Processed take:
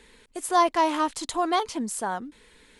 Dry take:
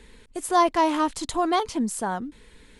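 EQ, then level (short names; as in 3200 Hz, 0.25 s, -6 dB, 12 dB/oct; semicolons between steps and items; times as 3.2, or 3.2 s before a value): low shelf 230 Hz -10.5 dB; 0.0 dB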